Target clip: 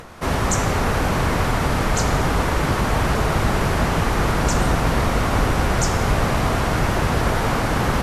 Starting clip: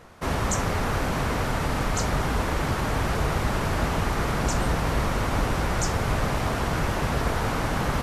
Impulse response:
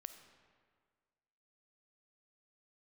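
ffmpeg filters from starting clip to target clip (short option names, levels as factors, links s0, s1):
-filter_complex "[0:a]acompressor=mode=upward:threshold=0.0112:ratio=2.5[s0];[1:a]atrim=start_sample=2205,asetrate=25578,aresample=44100[s1];[s0][s1]afir=irnorm=-1:irlink=0,volume=2.51"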